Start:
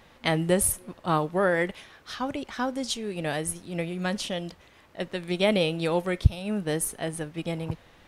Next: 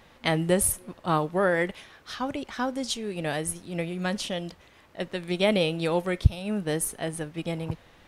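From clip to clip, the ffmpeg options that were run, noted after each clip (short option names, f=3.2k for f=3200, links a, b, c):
-af anull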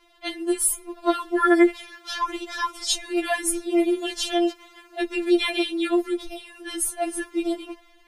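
-af "dynaudnorm=f=170:g=9:m=10dB,afftfilt=real='re*4*eq(mod(b,16),0)':imag='im*4*eq(mod(b,16),0)':win_size=2048:overlap=0.75"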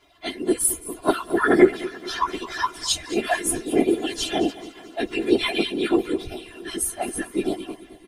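-af "afftfilt=real='hypot(re,im)*cos(2*PI*random(0))':imag='hypot(re,im)*sin(2*PI*random(1))':win_size=512:overlap=0.75,aecho=1:1:218|436|654|872|1090:0.141|0.0735|0.0382|0.0199|0.0103,volume=6.5dB"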